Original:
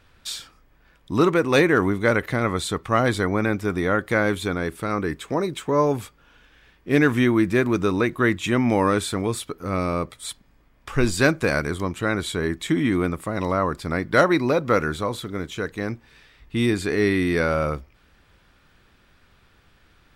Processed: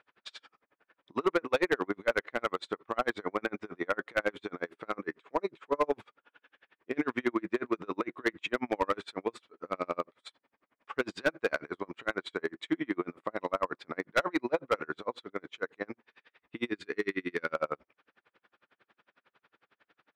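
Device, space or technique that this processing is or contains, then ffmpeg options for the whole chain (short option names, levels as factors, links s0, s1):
helicopter radio: -filter_complex "[0:a]asettb=1/sr,asplit=3[s0][s1][s2];[s0]atrim=end=16.714[s3];[s1]atrim=start=16.71:end=17.55,asetpts=PTS-STARTPTS,afade=t=in:d=0.004:c=qsin,afade=t=out:st=0.836:d=0.004:c=qsin,equalizer=f=710:w=1.3:g=-10.5[s4];[s2]atrim=start=17.546[s5];[s3][s4]acrossfade=d=0.004:c1=hsin:c2=qsin[s6];[s6][s5]acrossfade=d=0.004:c1=qsin:c2=hsin,highpass=380,lowpass=2600,aeval=exprs='val(0)*pow(10,-38*(0.5-0.5*cos(2*PI*11*n/s))/20)':c=same,asoftclip=type=hard:threshold=0.112"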